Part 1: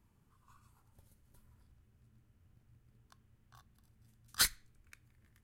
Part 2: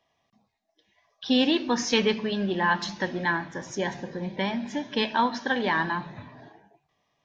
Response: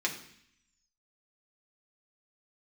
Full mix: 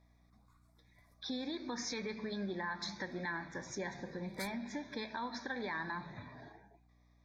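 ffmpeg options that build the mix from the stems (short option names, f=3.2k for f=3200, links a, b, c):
-filter_complex "[0:a]volume=-8.5dB[a];[1:a]alimiter=limit=-20.5dB:level=0:latency=1:release=143,acompressor=threshold=-41dB:ratio=1.5,aeval=exprs='val(0)+0.000891*(sin(2*PI*60*n/s)+sin(2*PI*2*60*n/s)/2+sin(2*PI*3*60*n/s)/3+sin(2*PI*4*60*n/s)/4+sin(2*PI*5*60*n/s)/5)':c=same,volume=-5.5dB,asplit=2[b][c];[c]apad=whole_len=239815[d];[a][d]sidechaincompress=threshold=-51dB:ratio=4:attack=23:release=324[e];[e][b]amix=inputs=2:normalize=0,asuperstop=centerf=2900:order=8:qfactor=2.6,equalizer=f=2.8k:w=1.3:g=7"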